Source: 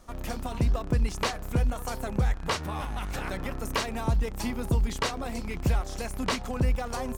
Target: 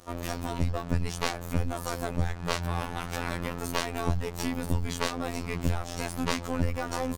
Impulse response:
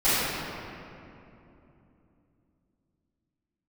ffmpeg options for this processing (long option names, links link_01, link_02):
-filter_complex "[0:a]highpass=51,asplit=2[link_01][link_02];[link_02]alimiter=level_in=0.5dB:limit=-24dB:level=0:latency=1:release=366,volume=-0.5dB,volume=0dB[link_03];[link_01][link_03]amix=inputs=2:normalize=0,asplit=2[link_04][link_05];[link_05]asetrate=22050,aresample=44100,atempo=2,volume=-8dB[link_06];[link_04][link_06]amix=inputs=2:normalize=0,aeval=exprs='clip(val(0),-1,0.0355)':channel_layout=same,afftfilt=real='hypot(re,im)*cos(PI*b)':imag='0':win_size=2048:overlap=0.75,volume=1dB"